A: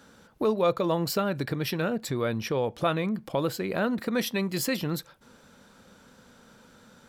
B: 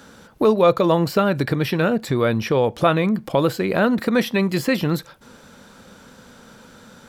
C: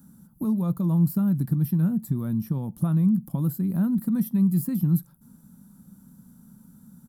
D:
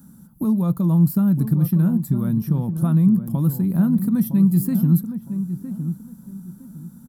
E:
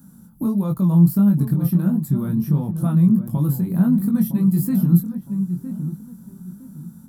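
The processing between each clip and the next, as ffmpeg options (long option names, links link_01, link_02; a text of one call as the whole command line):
ffmpeg -i in.wav -filter_complex "[0:a]acrossover=split=2900[link_01][link_02];[link_02]acompressor=threshold=-41dB:ratio=4:attack=1:release=60[link_03];[link_01][link_03]amix=inputs=2:normalize=0,volume=9dB" out.wav
ffmpeg -i in.wav -af "firequalizer=gain_entry='entry(100,0);entry(170,11);entry(450,-21);entry(910,-12);entry(2300,-27);entry(11000,10)':delay=0.05:min_phase=1,volume=-7dB" out.wav
ffmpeg -i in.wav -filter_complex "[0:a]asplit=2[link_01][link_02];[link_02]adelay=961,lowpass=frequency=1100:poles=1,volume=-9.5dB,asplit=2[link_03][link_04];[link_04]adelay=961,lowpass=frequency=1100:poles=1,volume=0.29,asplit=2[link_05][link_06];[link_06]adelay=961,lowpass=frequency=1100:poles=1,volume=0.29[link_07];[link_01][link_03][link_05][link_07]amix=inputs=4:normalize=0,volume=5dB" out.wav
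ffmpeg -i in.wav -af "flanger=delay=19.5:depth=3.8:speed=1.5,volume=3.5dB" out.wav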